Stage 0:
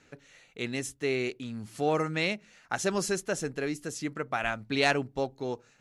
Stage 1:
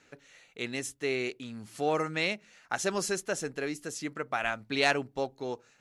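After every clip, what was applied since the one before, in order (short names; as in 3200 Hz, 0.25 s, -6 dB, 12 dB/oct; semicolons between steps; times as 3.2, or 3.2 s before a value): low shelf 230 Hz -7.5 dB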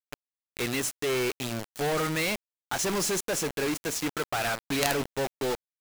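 added harmonics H 2 -8 dB, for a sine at -10.5 dBFS; companded quantiser 2-bit; gain -1 dB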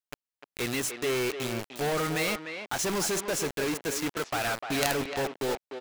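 speakerphone echo 0.3 s, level -7 dB; gain -1 dB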